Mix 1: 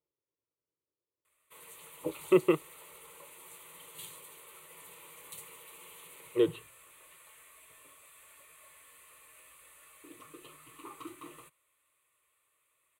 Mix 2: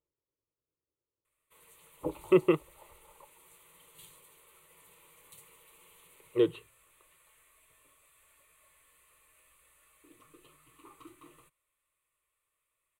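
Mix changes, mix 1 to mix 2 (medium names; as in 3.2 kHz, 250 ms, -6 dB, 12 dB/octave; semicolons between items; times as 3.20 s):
first sound -8.0 dB; second sound +6.0 dB; master: remove high-pass 160 Hz 6 dB/octave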